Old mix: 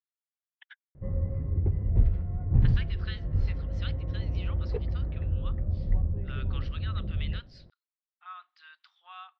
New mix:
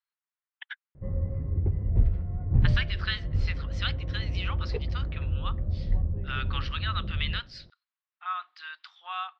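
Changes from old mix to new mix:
speech +11.5 dB; second sound: unmuted

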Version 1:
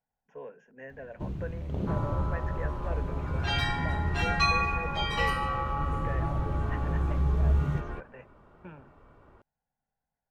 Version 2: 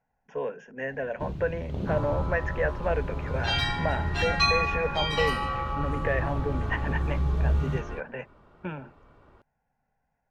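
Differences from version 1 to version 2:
speech +11.5 dB; master: add peaking EQ 4.1 kHz +5.5 dB 1.2 oct

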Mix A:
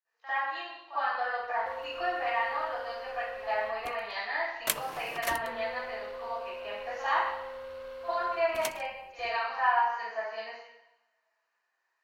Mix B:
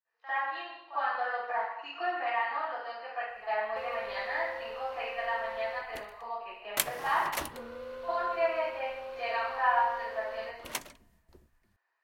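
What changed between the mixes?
speech: add distance through air 140 m; background: entry +2.10 s

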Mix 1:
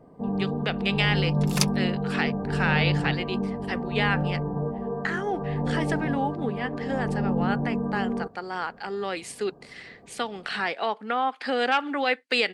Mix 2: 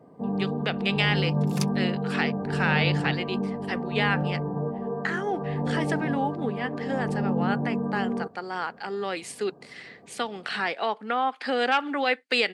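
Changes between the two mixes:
second sound -9.0 dB; master: add high-pass 110 Hz 12 dB/octave

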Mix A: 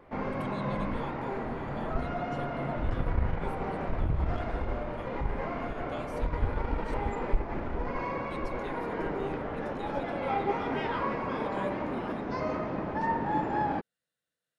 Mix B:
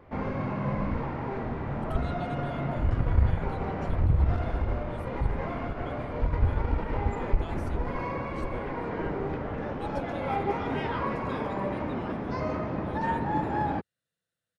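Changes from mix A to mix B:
speech: entry +1.50 s; master: add peaking EQ 86 Hz +8.5 dB 1.7 oct

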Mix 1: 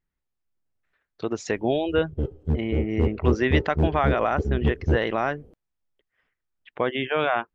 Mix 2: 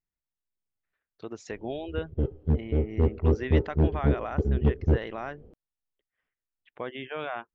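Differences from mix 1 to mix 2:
speech -11.0 dB; background: add distance through air 180 m

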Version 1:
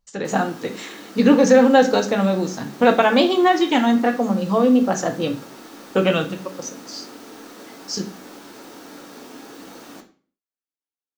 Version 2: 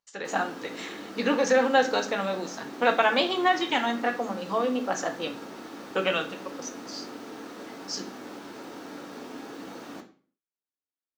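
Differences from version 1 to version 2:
speech: add high-pass 1.3 kHz 6 dB/octave; master: add treble shelf 5.5 kHz -11 dB

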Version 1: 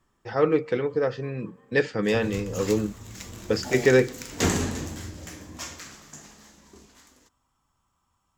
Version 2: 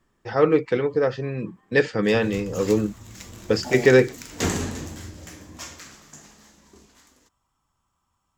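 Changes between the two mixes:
speech +4.5 dB; reverb: off

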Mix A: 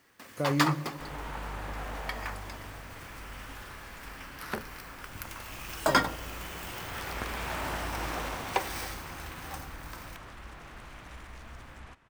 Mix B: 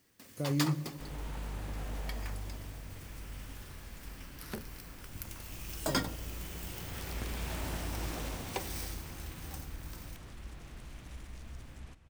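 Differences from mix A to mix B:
second sound: send on; master: add peaking EQ 1.2 kHz -13 dB 2.7 oct

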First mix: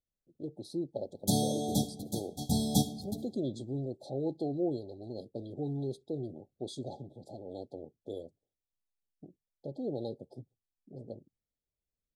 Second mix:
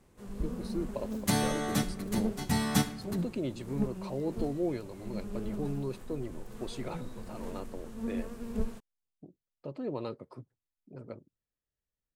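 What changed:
first sound: unmuted; master: remove brick-wall FIR band-stop 860–3200 Hz

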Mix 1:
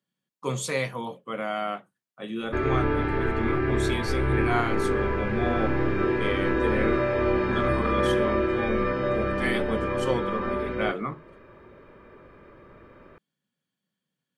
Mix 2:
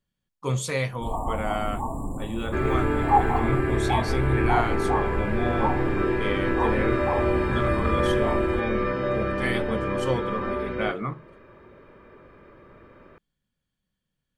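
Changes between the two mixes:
speech: remove high-pass 150 Hz 24 dB/octave; first sound: unmuted

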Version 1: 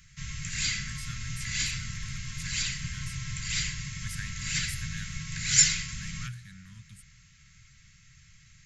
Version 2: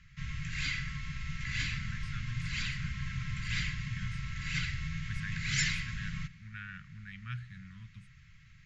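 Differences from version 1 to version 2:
speech: entry +1.05 s; master: add low-pass 2.8 kHz 12 dB/octave

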